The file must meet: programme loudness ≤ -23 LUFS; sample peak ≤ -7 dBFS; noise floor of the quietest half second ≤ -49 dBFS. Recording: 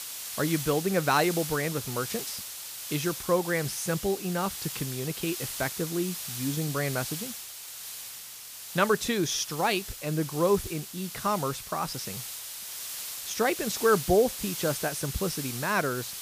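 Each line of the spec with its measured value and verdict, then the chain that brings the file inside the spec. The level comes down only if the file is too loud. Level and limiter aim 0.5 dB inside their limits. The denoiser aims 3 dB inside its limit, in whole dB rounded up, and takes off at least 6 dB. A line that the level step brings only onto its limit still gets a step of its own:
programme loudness -29.0 LUFS: pass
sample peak -10.0 dBFS: pass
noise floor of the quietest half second -43 dBFS: fail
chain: noise reduction 9 dB, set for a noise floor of -43 dBFS

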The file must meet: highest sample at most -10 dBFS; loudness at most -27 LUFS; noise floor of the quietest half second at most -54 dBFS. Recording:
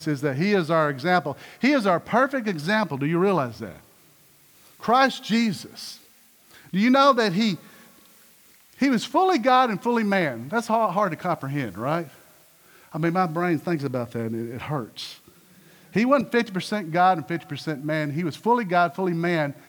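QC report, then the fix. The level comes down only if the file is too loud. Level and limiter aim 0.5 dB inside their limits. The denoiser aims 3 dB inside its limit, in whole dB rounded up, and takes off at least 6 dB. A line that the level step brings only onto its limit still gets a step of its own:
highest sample -6.0 dBFS: fail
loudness -23.0 LUFS: fail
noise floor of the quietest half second -56 dBFS: pass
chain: trim -4.5 dB

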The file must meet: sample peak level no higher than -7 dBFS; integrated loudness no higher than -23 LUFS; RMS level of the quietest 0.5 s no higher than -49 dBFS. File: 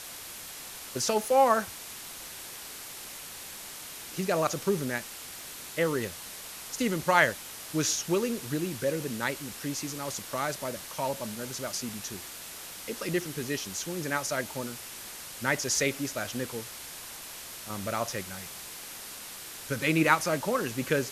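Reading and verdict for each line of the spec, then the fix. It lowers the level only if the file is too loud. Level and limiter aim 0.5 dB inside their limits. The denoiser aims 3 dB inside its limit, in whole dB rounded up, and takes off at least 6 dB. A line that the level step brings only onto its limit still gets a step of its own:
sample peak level -7.5 dBFS: pass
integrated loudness -31.0 LUFS: pass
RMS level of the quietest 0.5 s -43 dBFS: fail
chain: noise reduction 9 dB, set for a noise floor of -43 dBFS

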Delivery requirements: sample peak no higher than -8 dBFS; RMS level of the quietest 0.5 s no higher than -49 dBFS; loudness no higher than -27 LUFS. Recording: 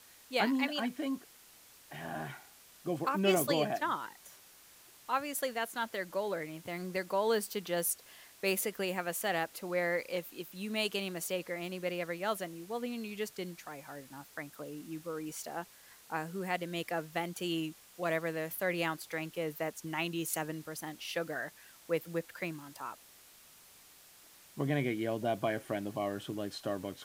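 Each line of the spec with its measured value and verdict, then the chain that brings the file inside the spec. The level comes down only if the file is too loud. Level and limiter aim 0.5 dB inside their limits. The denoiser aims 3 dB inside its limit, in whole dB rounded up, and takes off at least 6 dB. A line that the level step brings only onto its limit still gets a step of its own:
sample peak -17.0 dBFS: pass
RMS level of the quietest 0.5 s -59 dBFS: pass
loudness -36.0 LUFS: pass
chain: none needed

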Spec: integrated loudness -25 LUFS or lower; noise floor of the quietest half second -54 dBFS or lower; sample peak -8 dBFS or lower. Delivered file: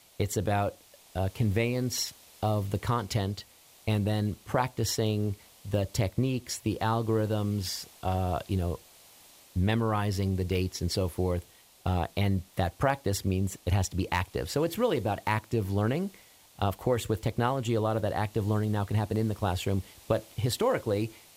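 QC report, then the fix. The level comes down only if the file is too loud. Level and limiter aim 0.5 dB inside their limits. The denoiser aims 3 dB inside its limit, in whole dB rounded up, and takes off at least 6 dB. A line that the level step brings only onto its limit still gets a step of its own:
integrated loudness -30.0 LUFS: pass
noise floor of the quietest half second -55 dBFS: pass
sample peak -12.5 dBFS: pass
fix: none needed

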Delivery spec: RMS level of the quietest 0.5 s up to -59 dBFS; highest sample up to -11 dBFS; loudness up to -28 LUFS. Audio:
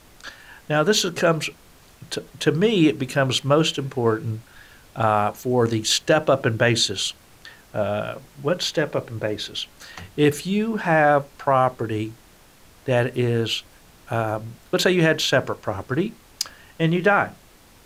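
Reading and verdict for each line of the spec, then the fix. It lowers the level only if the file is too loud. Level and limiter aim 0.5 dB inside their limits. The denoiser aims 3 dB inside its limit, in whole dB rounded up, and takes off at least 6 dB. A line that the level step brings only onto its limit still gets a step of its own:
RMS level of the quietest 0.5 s -51 dBFS: fail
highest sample -5.5 dBFS: fail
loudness -22.0 LUFS: fail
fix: noise reduction 6 dB, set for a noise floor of -51 dBFS; trim -6.5 dB

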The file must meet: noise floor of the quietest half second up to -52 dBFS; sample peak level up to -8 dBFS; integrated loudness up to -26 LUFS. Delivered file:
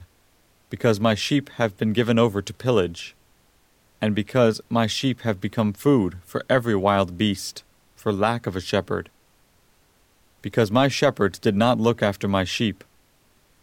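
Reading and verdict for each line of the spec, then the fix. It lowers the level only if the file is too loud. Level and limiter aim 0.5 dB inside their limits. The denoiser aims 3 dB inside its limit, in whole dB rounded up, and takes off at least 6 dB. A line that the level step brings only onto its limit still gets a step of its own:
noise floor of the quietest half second -60 dBFS: pass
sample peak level -5.0 dBFS: fail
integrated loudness -22.5 LUFS: fail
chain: trim -4 dB

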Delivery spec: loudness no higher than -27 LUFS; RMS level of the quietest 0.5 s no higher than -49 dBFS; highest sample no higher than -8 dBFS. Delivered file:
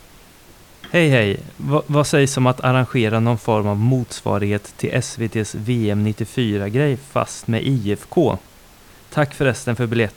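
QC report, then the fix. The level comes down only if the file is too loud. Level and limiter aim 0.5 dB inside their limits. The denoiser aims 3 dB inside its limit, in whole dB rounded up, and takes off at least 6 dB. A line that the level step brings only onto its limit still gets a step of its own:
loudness -19.5 LUFS: fail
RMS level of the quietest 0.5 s -46 dBFS: fail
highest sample -3.0 dBFS: fail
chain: trim -8 dB

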